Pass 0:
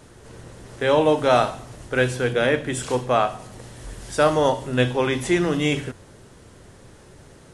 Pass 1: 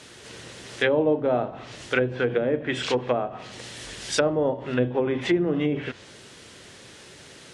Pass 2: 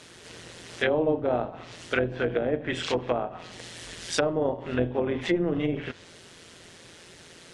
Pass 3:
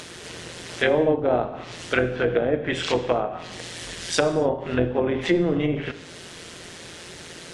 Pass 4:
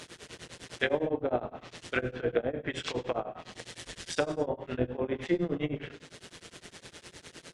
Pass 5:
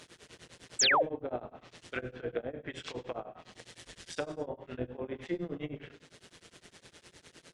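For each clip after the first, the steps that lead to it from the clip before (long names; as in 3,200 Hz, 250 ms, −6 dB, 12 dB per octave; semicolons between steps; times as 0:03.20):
treble cut that deepens with the level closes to 500 Hz, closed at −16.5 dBFS; meter weighting curve D
amplitude modulation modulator 170 Hz, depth 45%
in parallel at 0 dB: upward compression, threshold −32 dBFS; on the sum: reverb whose tail is shaped and stops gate 310 ms falling, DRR 10.5 dB; level −2 dB
shaped tremolo triangle 9.8 Hz, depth 100%; level −4.5 dB
sound drawn into the spectrogram fall, 0:00.79–0:01.03, 440–8,400 Hz −18 dBFS; level −7 dB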